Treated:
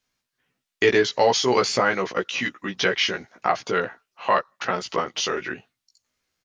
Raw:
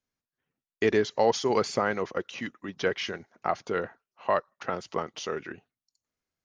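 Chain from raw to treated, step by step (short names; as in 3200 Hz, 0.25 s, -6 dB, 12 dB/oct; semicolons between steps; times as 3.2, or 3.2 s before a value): in parallel at -2 dB: compressor, threshold -35 dBFS, peak gain reduction 16.5 dB; on the sum: bell 3500 Hz +7.5 dB 3 oct; doubler 16 ms -2.5 dB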